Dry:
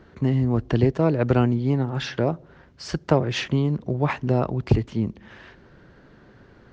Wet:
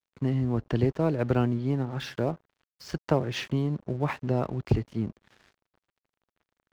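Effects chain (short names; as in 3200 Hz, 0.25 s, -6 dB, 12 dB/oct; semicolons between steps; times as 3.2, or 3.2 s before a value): gate with hold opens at -44 dBFS; crossover distortion -43 dBFS; gain -5 dB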